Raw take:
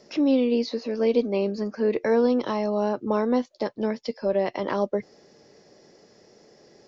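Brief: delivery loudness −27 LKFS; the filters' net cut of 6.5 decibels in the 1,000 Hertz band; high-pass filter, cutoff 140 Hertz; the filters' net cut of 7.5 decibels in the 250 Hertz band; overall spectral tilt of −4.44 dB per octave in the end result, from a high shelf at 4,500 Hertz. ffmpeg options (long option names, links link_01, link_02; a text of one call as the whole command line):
ffmpeg -i in.wav -af "highpass=140,equalizer=frequency=250:width_type=o:gain=-7.5,equalizer=frequency=1000:width_type=o:gain=-7.5,highshelf=frequency=4500:gain=-7.5,volume=2.5dB" out.wav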